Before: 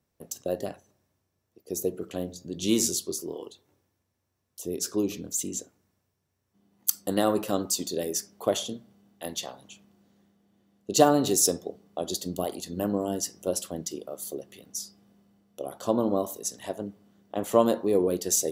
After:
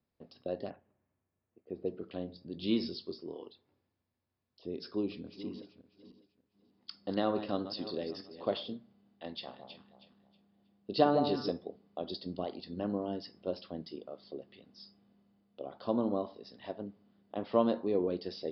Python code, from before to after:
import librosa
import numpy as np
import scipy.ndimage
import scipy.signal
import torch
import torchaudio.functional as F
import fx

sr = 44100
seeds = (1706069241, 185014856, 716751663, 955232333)

y = fx.lowpass(x, sr, hz=2500.0, slope=24, at=(0.7, 1.86))
y = fx.reverse_delay_fb(y, sr, ms=298, feedback_pct=42, wet_db=-12.0, at=(4.93, 8.74))
y = fx.echo_alternate(y, sr, ms=159, hz=1100.0, feedback_pct=53, wet_db=-5.0, at=(9.47, 11.49), fade=0.02)
y = scipy.signal.sosfilt(scipy.signal.cheby1(10, 1.0, 5200.0, 'lowpass', fs=sr, output='sos'), y)
y = fx.peak_eq(y, sr, hz=240.0, db=4.5, octaves=0.33)
y = F.gain(torch.from_numpy(y), -7.0).numpy()